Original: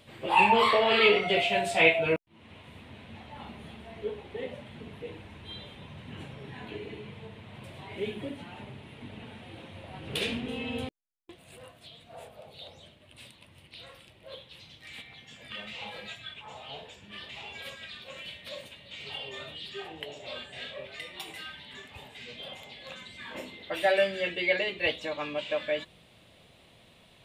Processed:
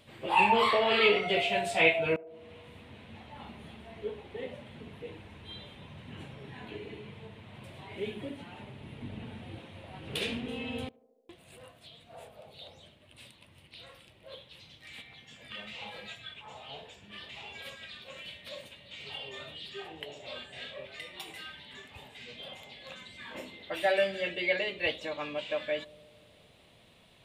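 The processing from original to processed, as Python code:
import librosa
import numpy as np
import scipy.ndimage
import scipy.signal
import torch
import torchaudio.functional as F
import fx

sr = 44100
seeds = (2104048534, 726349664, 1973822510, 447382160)

y = fx.low_shelf(x, sr, hz=340.0, db=7.5, at=(8.81, 9.59))
y = fx.echo_banded(y, sr, ms=73, feedback_pct=83, hz=460.0, wet_db=-22.0)
y = F.gain(torch.from_numpy(y), -2.5).numpy()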